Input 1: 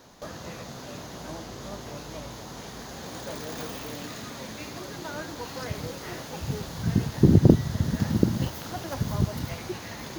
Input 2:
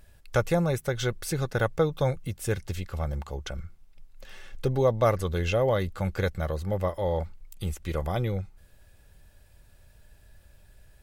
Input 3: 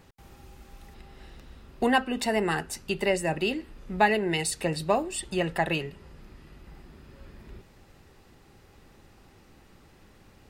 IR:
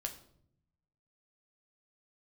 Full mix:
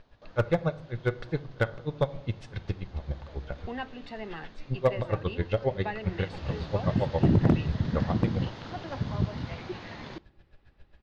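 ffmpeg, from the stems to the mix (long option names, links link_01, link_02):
-filter_complex "[0:a]volume=-4.5dB,afade=type=in:start_time=5.96:duration=0.59:silence=0.266073,asplit=2[link_01][link_02];[link_02]volume=-11.5dB[link_03];[1:a]aeval=exprs='val(0)*pow(10,-39*(0.5-0.5*cos(2*PI*7.4*n/s))/20)':channel_layout=same,volume=-0.5dB,asplit=2[link_04][link_05];[link_05]volume=-3.5dB[link_06];[2:a]adelay=1850,volume=-13.5dB[link_07];[3:a]atrim=start_sample=2205[link_08];[link_03][link_06]amix=inputs=2:normalize=0[link_09];[link_09][link_08]afir=irnorm=-1:irlink=0[link_10];[link_01][link_04][link_07][link_10]amix=inputs=4:normalize=0,lowpass=frequency=4200:width=0.5412,lowpass=frequency=4200:width=1.3066,asoftclip=type=hard:threshold=-15dB"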